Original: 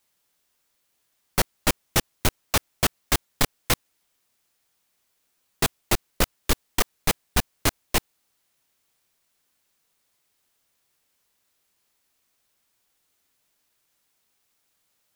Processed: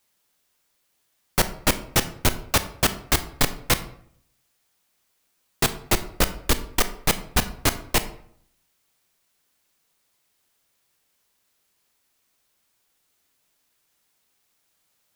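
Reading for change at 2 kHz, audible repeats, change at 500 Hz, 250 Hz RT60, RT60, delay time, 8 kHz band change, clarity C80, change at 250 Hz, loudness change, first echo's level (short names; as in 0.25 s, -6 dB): +2.0 dB, none, +2.0 dB, 0.75 s, 0.60 s, none, +1.5 dB, 17.0 dB, +2.0 dB, +2.0 dB, none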